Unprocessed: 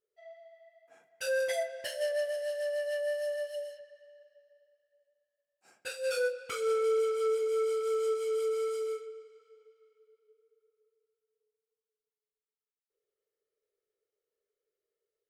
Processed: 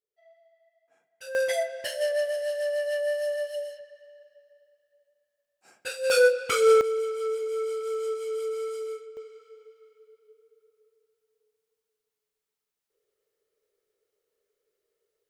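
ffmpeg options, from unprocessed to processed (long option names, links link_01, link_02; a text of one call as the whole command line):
ffmpeg -i in.wav -af "asetnsamples=nb_out_samples=441:pad=0,asendcmd='1.35 volume volume 5dB;6.1 volume volume 11.5dB;6.81 volume volume 0dB;9.17 volume volume 8.5dB',volume=-7.5dB" out.wav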